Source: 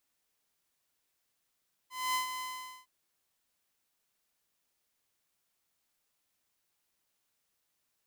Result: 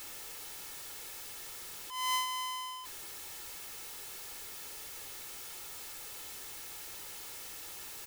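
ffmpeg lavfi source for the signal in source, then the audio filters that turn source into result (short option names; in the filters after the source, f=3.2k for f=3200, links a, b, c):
-f lavfi -i "aevalsrc='0.0531*(2*mod(1020*t,1)-1)':d=0.96:s=44100,afade=t=in:d=0.244,afade=t=out:st=0.244:d=0.118:silence=0.376,afade=t=out:st=0.51:d=0.45"
-af "aeval=exprs='val(0)+0.5*0.01*sgn(val(0))':c=same,bandreject=f=60:t=h:w=6,bandreject=f=120:t=h:w=6,aecho=1:1:2.3:0.47"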